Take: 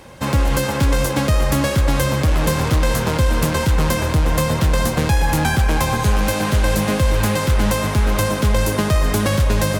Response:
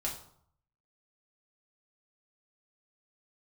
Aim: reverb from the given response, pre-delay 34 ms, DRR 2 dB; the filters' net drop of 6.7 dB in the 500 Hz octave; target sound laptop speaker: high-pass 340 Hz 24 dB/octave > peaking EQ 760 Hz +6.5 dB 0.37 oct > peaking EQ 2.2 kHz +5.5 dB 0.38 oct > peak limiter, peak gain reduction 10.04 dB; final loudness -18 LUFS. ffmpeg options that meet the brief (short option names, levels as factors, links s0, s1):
-filter_complex "[0:a]equalizer=f=500:t=o:g=-8.5,asplit=2[s0][s1];[1:a]atrim=start_sample=2205,adelay=34[s2];[s1][s2]afir=irnorm=-1:irlink=0,volume=0.596[s3];[s0][s3]amix=inputs=2:normalize=0,highpass=f=340:w=0.5412,highpass=f=340:w=1.3066,equalizer=f=760:t=o:w=0.37:g=6.5,equalizer=f=2200:t=o:w=0.38:g=5.5,volume=2.24,alimiter=limit=0.335:level=0:latency=1"